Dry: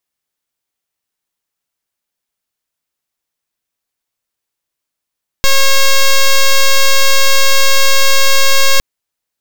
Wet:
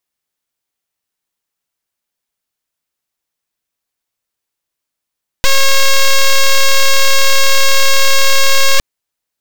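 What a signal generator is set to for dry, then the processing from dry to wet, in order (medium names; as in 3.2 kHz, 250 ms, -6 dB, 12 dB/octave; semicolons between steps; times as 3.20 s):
pulse 544 Hz, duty 5% -6.5 dBFS 3.36 s
loudspeaker Doppler distortion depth 0.77 ms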